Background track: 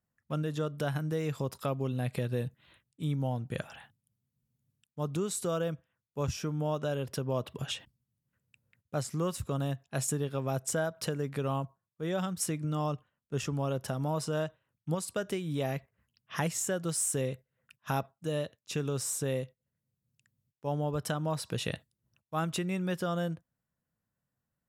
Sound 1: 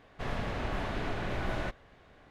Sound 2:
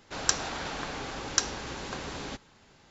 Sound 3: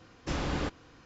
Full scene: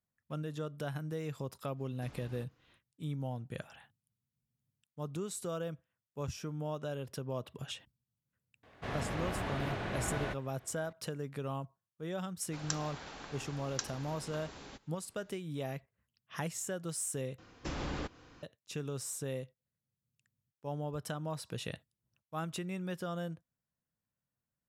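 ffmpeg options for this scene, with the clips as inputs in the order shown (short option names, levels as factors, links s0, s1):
-filter_complex "[3:a]asplit=2[s0][s1];[0:a]volume=0.473[s2];[s0]acompressor=threshold=0.0224:ratio=6:attack=3.2:release=140:knee=1:detection=peak[s3];[1:a]highpass=56[s4];[s1]alimiter=level_in=1.33:limit=0.0631:level=0:latency=1:release=172,volume=0.75[s5];[s2]asplit=2[s6][s7];[s6]atrim=end=17.384[s8];[s5]atrim=end=1.05,asetpts=PTS-STARTPTS,volume=0.794[s9];[s7]atrim=start=18.426[s10];[s3]atrim=end=1.05,asetpts=PTS-STARTPTS,volume=0.141,afade=t=in:d=0.05,afade=t=out:st=1:d=0.05,adelay=1750[s11];[s4]atrim=end=2.3,asetpts=PTS-STARTPTS,volume=0.794,afade=t=in:d=0.004:c=hsin,afade=t=out:st=2.296:d=0.004:c=hsin,adelay=8630[s12];[2:a]atrim=end=2.9,asetpts=PTS-STARTPTS,volume=0.251,afade=t=in:d=0.004:c=hsin,afade=t=out:st=2.896:d=0.004:c=hsin,adelay=12410[s13];[s8][s9]acrossfade=d=0.004:c1=hsin:c2=hsin[s14];[s14][s10]acrossfade=d=0.004:c1=hsin:c2=hsin[s15];[s15][s11][s12][s13]amix=inputs=4:normalize=0"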